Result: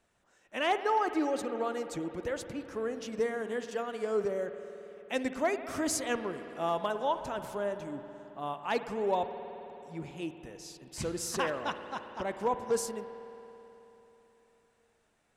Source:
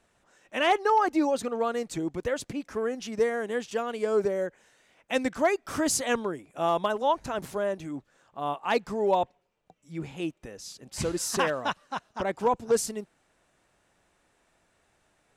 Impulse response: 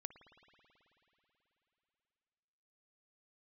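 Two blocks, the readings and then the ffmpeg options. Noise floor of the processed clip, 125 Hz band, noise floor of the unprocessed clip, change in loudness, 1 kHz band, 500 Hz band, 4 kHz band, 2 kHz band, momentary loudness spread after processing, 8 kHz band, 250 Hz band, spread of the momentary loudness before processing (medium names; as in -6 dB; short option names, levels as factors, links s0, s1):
-71 dBFS, -5.0 dB, -70 dBFS, -5.0 dB, -5.0 dB, -5.0 dB, -5.5 dB, -5.0 dB, 14 LU, -5.5 dB, -5.0 dB, 12 LU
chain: -filter_complex "[1:a]atrim=start_sample=2205[s0];[0:a][s0]afir=irnorm=-1:irlink=0"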